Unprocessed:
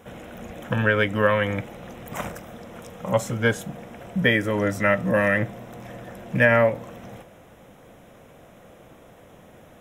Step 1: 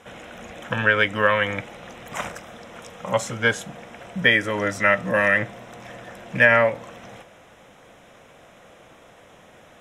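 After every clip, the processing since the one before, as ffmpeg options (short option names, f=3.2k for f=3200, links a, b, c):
-af "lowpass=8k,tiltshelf=f=630:g=-5.5"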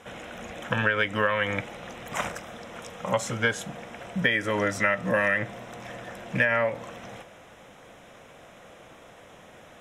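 -af "acompressor=threshold=-20dB:ratio=6"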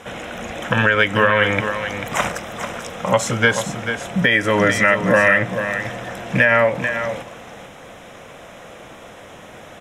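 -af "aecho=1:1:441:0.355,alimiter=level_in=11.5dB:limit=-1dB:release=50:level=0:latency=1,volume=-2dB"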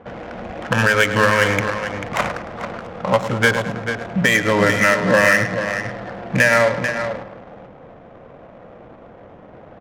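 -af "aecho=1:1:106|212|318|424|530|636:0.282|0.152|0.0822|0.0444|0.024|0.0129,adynamicsmooth=sensitivity=1.5:basefreq=760"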